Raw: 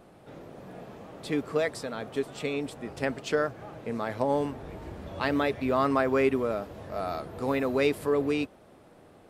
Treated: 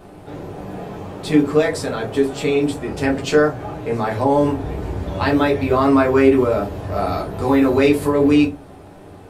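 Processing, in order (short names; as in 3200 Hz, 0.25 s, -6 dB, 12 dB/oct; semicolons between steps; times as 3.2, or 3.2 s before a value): in parallel at 0 dB: limiter -23 dBFS, peak gain reduction 11.5 dB; on the sum: reverb RT60 0.25 s, pre-delay 3 ms, DRR -2.5 dB; gain +1.5 dB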